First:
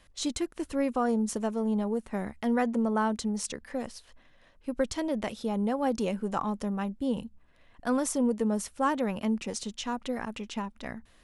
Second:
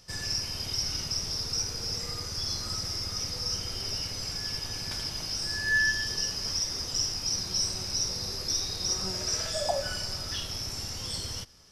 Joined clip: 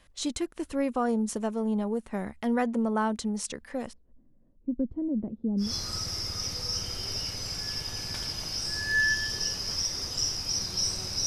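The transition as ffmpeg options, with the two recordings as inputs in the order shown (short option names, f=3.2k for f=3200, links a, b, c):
-filter_complex "[0:a]asettb=1/sr,asplit=3[a][b][c];[a]atrim=end=3.934[d];[b]atrim=start=3.93:end=5.73,asetpts=PTS-STARTPTS,afade=t=in:d=0.004:c=qsin,afade=t=out:st=1.796:d=0.004:c=qsin,lowpass=f=270:t=q:w=1.6[e];[c]atrim=start=5.726[f];[d][e]acrossfade=d=0.004:c1=hsin:c2=qsin[g];[g][f]acrossfade=d=0.004:c1=qsin:c2=hsin,apad=whole_dur=11.26,atrim=end=11.26,atrim=end=5.73,asetpts=PTS-STARTPTS[h];[1:a]atrim=start=2.34:end=8.03,asetpts=PTS-STARTPTS[i];[h][i]acrossfade=d=0.16:c1=tri:c2=tri"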